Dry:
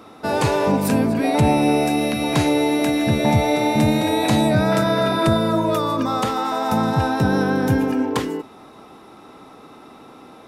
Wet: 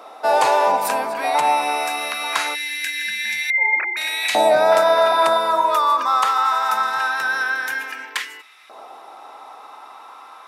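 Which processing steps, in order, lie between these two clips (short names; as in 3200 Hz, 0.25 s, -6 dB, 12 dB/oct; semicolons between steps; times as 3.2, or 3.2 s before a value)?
3.5–3.97 sine-wave speech; 2.55–3.58 spectral gain 280–1500 Hz -23 dB; LFO high-pass saw up 0.23 Hz 650–2200 Hz; gain +1.5 dB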